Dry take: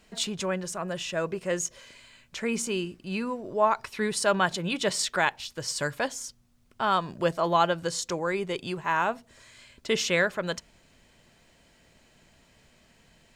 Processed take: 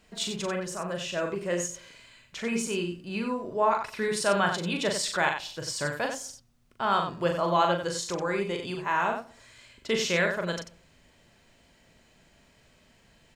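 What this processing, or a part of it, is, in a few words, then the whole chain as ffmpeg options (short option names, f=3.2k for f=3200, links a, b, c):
slapback doubling: -filter_complex "[0:a]equalizer=f=10k:w=0.61:g=-2,asplit=3[a][b][c];[b]adelay=40,volume=-5dB[d];[c]adelay=92,volume=-7.5dB[e];[a][d][e]amix=inputs=3:normalize=0,asplit=2[f][g];[g]adelay=122,lowpass=f=980:p=1,volume=-19.5dB,asplit=2[h][i];[i]adelay=122,lowpass=f=980:p=1,volume=0.3[j];[f][h][j]amix=inputs=3:normalize=0,volume=-2dB"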